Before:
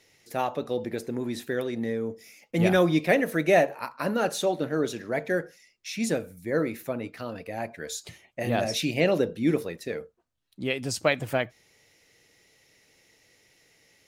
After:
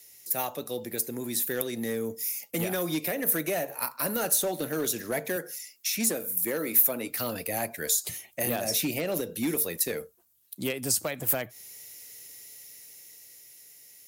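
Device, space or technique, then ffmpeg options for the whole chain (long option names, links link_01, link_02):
FM broadcast chain: -filter_complex "[0:a]highpass=48,dynaudnorm=framelen=250:gausssize=13:maxgain=9dB,acrossover=split=200|1900[link_01][link_02][link_03];[link_01]acompressor=threshold=-33dB:ratio=4[link_04];[link_02]acompressor=threshold=-18dB:ratio=4[link_05];[link_03]acompressor=threshold=-36dB:ratio=4[link_06];[link_04][link_05][link_06]amix=inputs=3:normalize=0,aemphasis=mode=production:type=50fm,alimiter=limit=-14.5dB:level=0:latency=1:release=241,asoftclip=type=hard:threshold=-18dB,lowpass=frequency=15000:width=0.5412,lowpass=frequency=15000:width=1.3066,aemphasis=mode=production:type=50fm,asettb=1/sr,asplit=3[link_07][link_08][link_09];[link_07]atrim=end=5.364[link_10];[link_08]atrim=start=5.36:end=7.11,asetpts=PTS-STARTPTS,afade=type=in:duration=0.004:curve=qsin,afade=type=out:start_time=1.746:duration=0.004:curve=qsin,highpass=180[link_11];[link_09]atrim=start=7.106[link_12];[link_10][link_11]acrossfade=duration=0.004:curve1=hsin:curve2=qsin[link_13];[link_13][link_12]acrossfade=duration=0.004:curve1=qsin:curve2=hsin,volume=-5dB"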